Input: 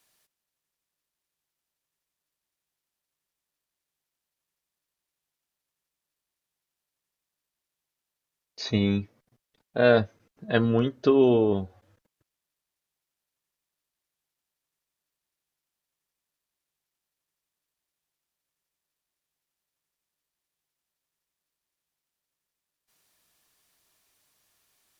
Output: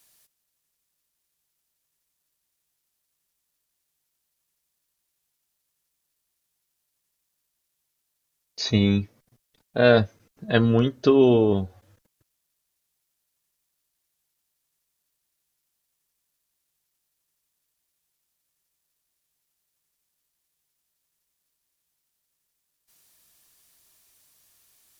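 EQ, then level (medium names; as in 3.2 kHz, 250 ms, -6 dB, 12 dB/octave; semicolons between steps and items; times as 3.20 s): bass shelf 170 Hz +5.5 dB; treble shelf 4.5 kHz +9.5 dB; +1.5 dB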